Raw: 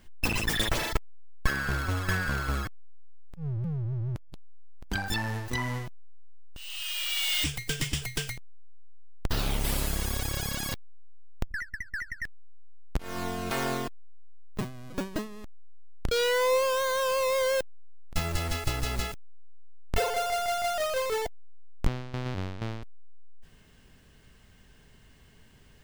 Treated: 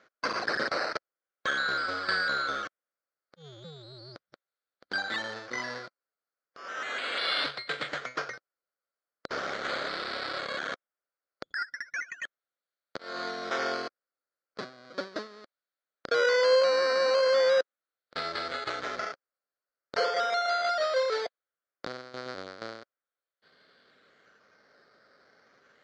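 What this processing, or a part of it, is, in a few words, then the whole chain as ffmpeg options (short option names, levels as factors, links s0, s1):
circuit-bent sampling toy: -af "acrusher=samples=10:mix=1:aa=0.000001:lfo=1:lforange=6:lforate=0.37,highpass=420,equalizer=f=540:t=q:w=4:g=6,equalizer=f=910:t=q:w=4:g=-8,equalizer=f=1400:t=q:w=4:g=8,equalizer=f=2700:t=q:w=4:g=-10,equalizer=f=4400:t=q:w=4:g=9,lowpass=f=5100:w=0.5412,lowpass=f=5100:w=1.3066"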